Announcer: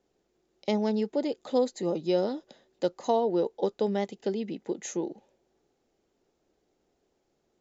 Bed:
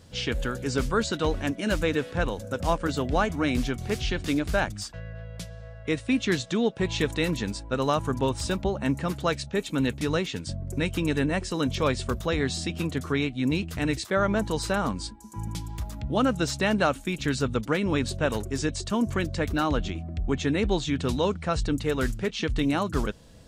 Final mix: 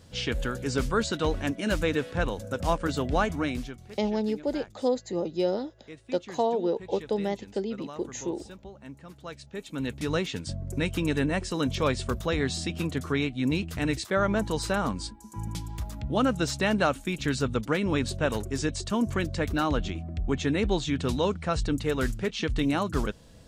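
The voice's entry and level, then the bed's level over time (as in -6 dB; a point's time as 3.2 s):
3.30 s, -0.5 dB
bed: 3.37 s -1 dB
3.94 s -18 dB
9.07 s -18 dB
10.18 s -1 dB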